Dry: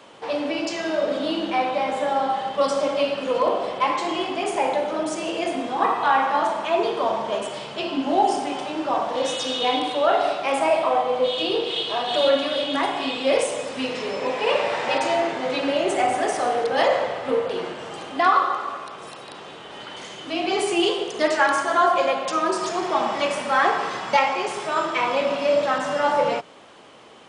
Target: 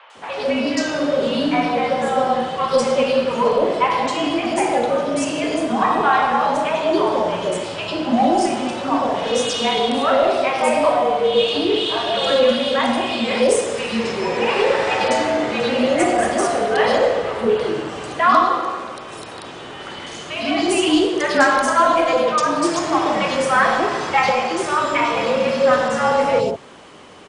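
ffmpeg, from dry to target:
-filter_complex "[0:a]acontrast=72,acrossover=split=750|3200[a][b][c];[c]adelay=100[d];[a]adelay=150[e];[e][b][d]amix=inputs=3:normalize=0,afreqshift=-35"

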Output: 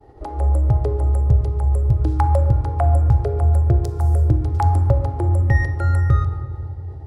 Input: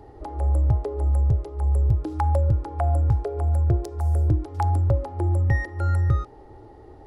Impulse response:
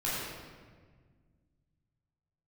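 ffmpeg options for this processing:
-filter_complex "[0:a]agate=range=-33dB:threshold=-40dB:ratio=3:detection=peak,asplit=2[a][b];[1:a]atrim=start_sample=2205,asetrate=35280,aresample=44100[c];[b][c]afir=irnorm=-1:irlink=0,volume=-18.5dB[d];[a][d]amix=inputs=2:normalize=0,volume=3.5dB"

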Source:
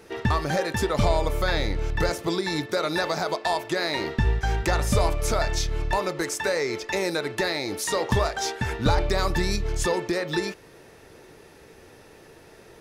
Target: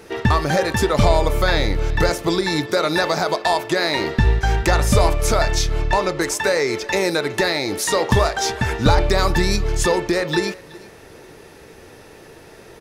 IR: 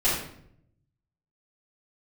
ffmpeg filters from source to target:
-filter_complex "[0:a]asettb=1/sr,asplit=3[a][b][c];[a]atrim=end=5.804[d];[b]atrim=start=5.8:end=6.21,asetpts=PTS-STARTPTS,afade=t=in:d=0.004:c=qsin,afade=t=out:st=0.406:d=0.004:c=qsin,lowpass=8.1k[e];[c]atrim=start=6.206[f];[d][e]acrossfade=d=0.004:c1=hsin:c2=qsin[g];[g][f]acrossfade=d=0.004:c1=qsin:c2=hsin,aecho=1:1:374:0.0794,volume=6.5dB"

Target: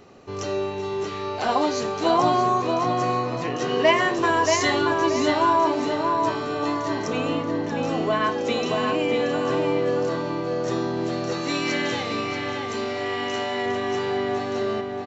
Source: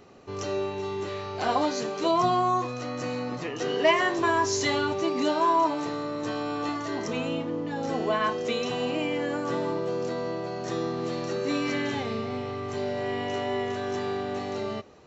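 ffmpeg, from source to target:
-filter_complex "[0:a]asettb=1/sr,asplit=3[a][b][c];[a]atrim=end=11.324[d];[b]atrim=start=11.32:end=13.66,asetpts=PTS-STARTPTS,afade=t=in:d=0.004:c=qsin,afade=t=out:st=2.336:d=0.004:c=qsin,tiltshelf=f=970:g=-5[e];[c]atrim=start=13.656[f];[d][e]acrossfade=d=0.004:c1=hsin:c2=qsin[g];[g][f]acrossfade=d=0.004:c1=qsin:c2=hsin,asplit=2[h][i];[i]adelay=631,lowpass=f=3.2k:p=1,volume=-3.5dB,asplit=2[j][k];[k]adelay=631,lowpass=f=3.2k:p=1,volume=0.35,asplit=2[l][m];[m]adelay=631,lowpass=f=3.2k:p=1,volume=0.35,asplit=2[n][o];[o]adelay=631,lowpass=f=3.2k:p=1,volume=0.35,asplit=2[p][q];[q]adelay=631,lowpass=f=3.2k:p=1,volume=0.35[r];[h][j][l][n][p][r]amix=inputs=6:normalize=0,volume=3dB"

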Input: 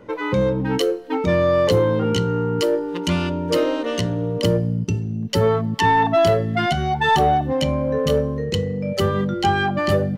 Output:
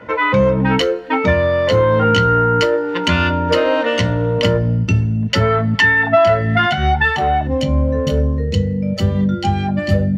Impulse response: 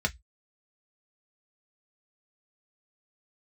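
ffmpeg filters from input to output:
-filter_complex "[0:a]asetnsamples=n=441:p=0,asendcmd='7.47 equalizer g -3',equalizer=f=1.4k:t=o:w=2.8:g=12.5,acompressor=threshold=-13dB:ratio=6[a];[1:a]atrim=start_sample=2205[b];[a][b]afir=irnorm=-1:irlink=0,volume=-6dB"

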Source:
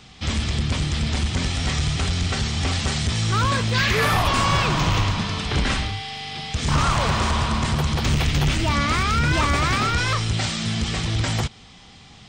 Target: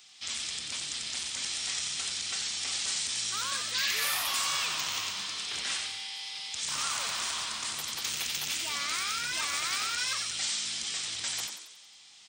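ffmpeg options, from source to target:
-filter_complex "[0:a]aderivative,asplit=7[a][b][c][d][e][f][g];[b]adelay=91,afreqshift=100,volume=-6dB[h];[c]adelay=182,afreqshift=200,volume=-12.4dB[i];[d]adelay=273,afreqshift=300,volume=-18.8dB[j];[e]adelay=364,afreqshift=400,volume=-25.1dB[k];[f]adelay=455,afreqshift=500,volume=-31.5dB[l];[g]adelay=546,afreqshift=600,volume=-37.9dB[m];[a][h][i][j][k][l][m]amix=inputs=7:normalize=0"

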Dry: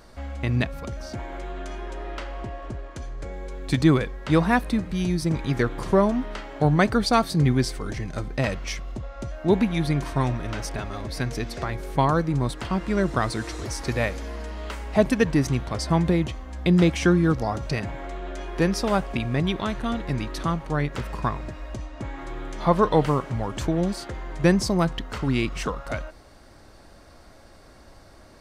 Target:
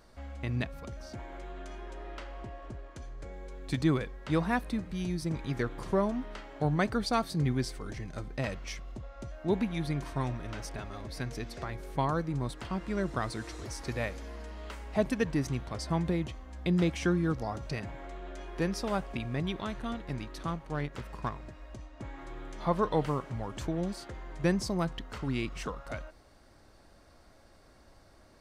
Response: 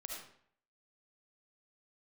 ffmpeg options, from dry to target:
-filter_complex "[0:a]asettb=1/sr,asplit=3[a][b][c];[a]atrim=end=19.934[d];[b]atrim=start=19.93:end=22,asetpts=PTS-STARTPTS,afade=t=in:d=0.004:c=qsin,afade=t=out:st=2.066:d=0.004:c=qsin,aeval=exprs='0.266*(cos(1*acos(clip(val(0)/0.266,-1,1)))-cos(1*PI/2))+0.0106*(cos(7*acos(clip(val(0)/0.266,-1,1)))-cos(7*PI/2))':c=same[e];[c]atrim=start=21.996[f];[d][e]acrossfade=d=0.004:c1=hsin:c2=qsin[g];[g][f]acrossfade=d=0.004:c1=qsin:c2=hsin,volume=-9dB"

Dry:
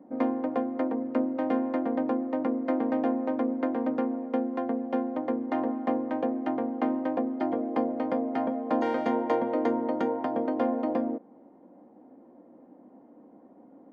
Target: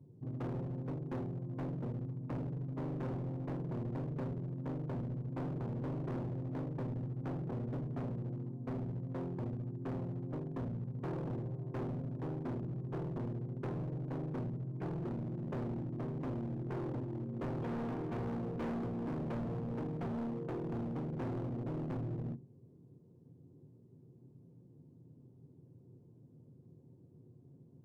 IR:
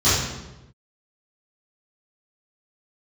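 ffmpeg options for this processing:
-filter_complex "[0:a]asetrate=22050,aresample=44100,asplit=2[a][b];[1:a]atrim=start_sample=2205,atrim=end_sample=4410[c];[b][c]afir=irnorm=-1:irlink=0,volume=-35dB[d];[a][d]amix=inputs=2:normalize=0,asoftclip=type=hard:threshold=-30.5dB,volume=-5.5dB"

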